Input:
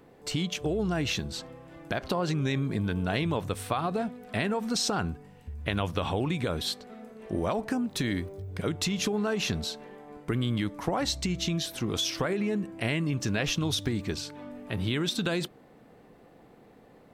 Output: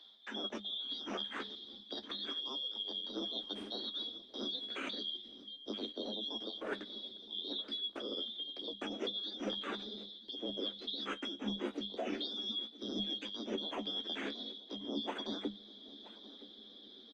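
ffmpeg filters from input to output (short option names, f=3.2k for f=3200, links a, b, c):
-filter_complex "[0:a]afftfilt=real='real(if(lt(b,272),68*(eq(floor(b/68),0)*2+eq(floor(b/68),1)*3+eq(floor(b/68),2)*0+eq(floor(b/68),3)*1)+mod(b,68),b),0)':imag='imag(if(lt(b,272),68*(eq(floor(b/68),0)*2+eq(floor(b/68),1)*3+eq(floor(b/68),2)*0+eq(floor(b/68),3)*1)+mod(b,68),b),0)':win_size=2048:overlap=0.75,lowpass=2.2k,asubboost=boost=9.5:cutoff=240,areverse,acompressor=threshold=-46dB:ratio=5,areverse,flanger=delay=8.2:depth=5.7:regen=37:speed=0.31:shape=triangular,afreqshift=200,asplit=2[a][b];[b]aecho=0:1:973:0.126[c];[a][c]amix=inputs=2:normalize=0,volume=11dB" -ar 48000 -c:a libopus -b:a 24k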